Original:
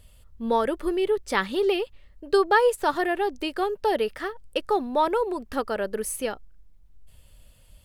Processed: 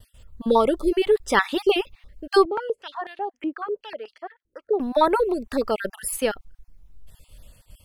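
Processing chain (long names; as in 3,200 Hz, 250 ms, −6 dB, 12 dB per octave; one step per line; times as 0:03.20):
time-frequency cells dropped at random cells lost 29%
downward expander −53 dBFS
0:02.45–0:04.80: band-pass on a step sequencer 8.1 Hz 320–4,100 Hz
level +5.5 dB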